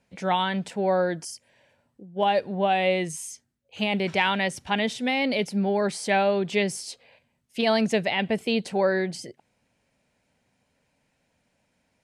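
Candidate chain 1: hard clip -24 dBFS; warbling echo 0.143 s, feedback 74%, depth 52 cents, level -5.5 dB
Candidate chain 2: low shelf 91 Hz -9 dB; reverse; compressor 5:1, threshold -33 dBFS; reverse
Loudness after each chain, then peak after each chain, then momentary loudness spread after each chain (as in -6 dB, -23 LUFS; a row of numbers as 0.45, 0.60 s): -27.0, -36.0 LUFS; -15.5, -21.0 dBFS; 12, 6 LU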